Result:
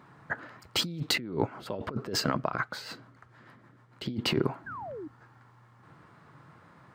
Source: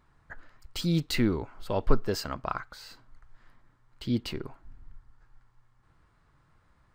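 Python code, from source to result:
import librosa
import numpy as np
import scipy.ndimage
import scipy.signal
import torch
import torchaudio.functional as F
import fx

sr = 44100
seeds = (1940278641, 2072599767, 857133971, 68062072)

y = scipy.signal.sosfilt(scipy.signal.butter(4, 120.0, 'highpass', fs=sr, output='sos'), x)
y = fx.high_shelf(y, sr, hz=3000.0, db=-9.5)
y = fx.over_compress(y, sr, threshold_db=-38.0, ratio=-1.0)
y = fx.rotary(y, sr, hz=6.7, at=(1.16, 4.06))
y = fx.spec_paint(y, sr, seeds[0], shape='fall', start_s=4.66, length_s=0.42, low_hz=280.0, high_hz=1700.0, level_db=-47.0)
y = y * 10.0 ** (7.5 / 20.0)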